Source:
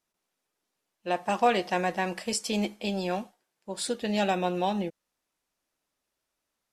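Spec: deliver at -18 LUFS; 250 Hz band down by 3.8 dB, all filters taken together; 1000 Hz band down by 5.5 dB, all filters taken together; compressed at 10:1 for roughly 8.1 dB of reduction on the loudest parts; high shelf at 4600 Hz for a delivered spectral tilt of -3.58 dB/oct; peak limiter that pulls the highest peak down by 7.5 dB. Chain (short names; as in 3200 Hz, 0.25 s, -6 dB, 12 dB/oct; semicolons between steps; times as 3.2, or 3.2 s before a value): bell 250 Hz -5 dB; bell 1000 Hz -8.5 dB; high shelf 4600 Hz +5 dB; compressor 10:1, threshold -30 dBFS; gain +20 dB; limiter -6.5 dBFS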